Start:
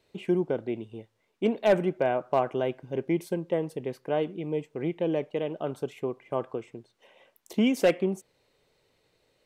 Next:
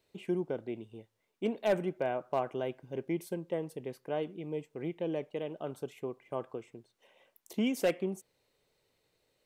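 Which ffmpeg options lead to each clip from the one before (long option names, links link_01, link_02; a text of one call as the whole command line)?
ffmpeg -i in.wav -af "highshelf=frequency=8100:gain=8.5,volume=-7dB" out.wav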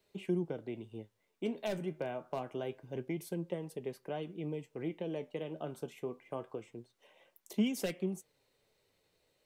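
ffmpeg -i in.wav -filter_complex "[0:a]acrossover=split=240|3000[link_01][link_02][link_03];[link_02]acompressor=threshold=-37dB:ratio=4[link_04];[link_01][link_04][link_03]amix=inputs=3:normalize=0,flanger=delay=4.9:depth=8:regen=62:speed=0.26:shape=sinusoidal,volume=4.5dB" out.wav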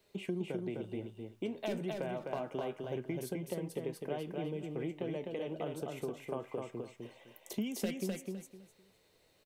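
ffmpeg -i in.wav -af "acompressor=threshold=-41dB:ratio=3,aecho=1:1:255|510|765:0.668|0.147|0.0323,volume=4.5dB" out.wav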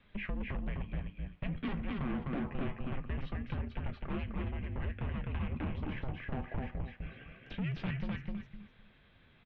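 ffmpeg -i in.wav -af "asoftclip=type=tanh:threshold=-38.5dB,highpass=frequency=200:width_type=q:width=0.5412,highpass=frequency=200:width_type=q:width=1.307,lowpass=frequency=3600:width_type=q:width=0.5176,lowpass=frequency=3600:width_type=q:width=0.7071,lowpass=frequency=3600:width_type=q:width=1.932,afreqshift=-400,volume=8dB" out.wav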